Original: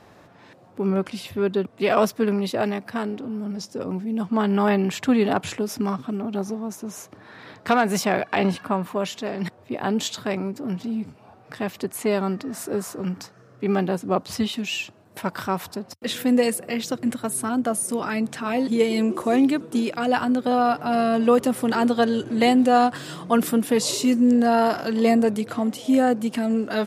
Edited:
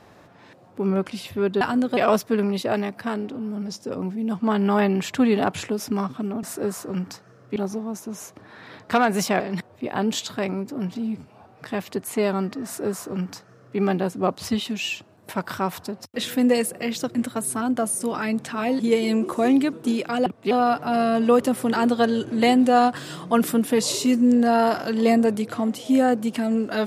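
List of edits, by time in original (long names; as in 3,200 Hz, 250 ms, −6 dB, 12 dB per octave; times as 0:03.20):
0:01.61–0:01.86: swap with 0:20.14–0:20.50
0:08.16–0:09.28: remove
0:12.53–0:13.66: duplicate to 0:06.32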